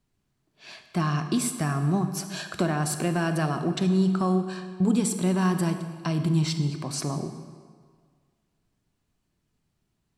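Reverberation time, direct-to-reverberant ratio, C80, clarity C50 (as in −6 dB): 1.8 s, 8.0 dB, 10.0 dB, 9.0 dB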